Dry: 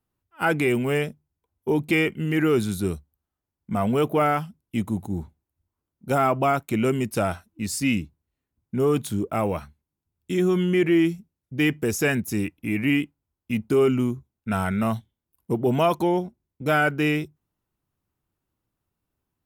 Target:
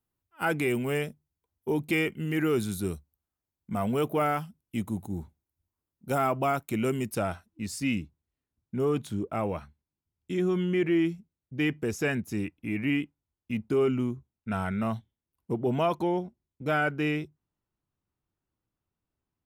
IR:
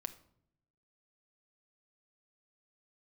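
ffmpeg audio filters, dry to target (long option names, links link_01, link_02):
-af "asetnsamples=nb_out_samples=441:pad=0,asendcmd='7.15 highshelf g -6.5;8.9 highshelf g -12',highshelf=frequency=7900:gain=5,volume=-5.5dB"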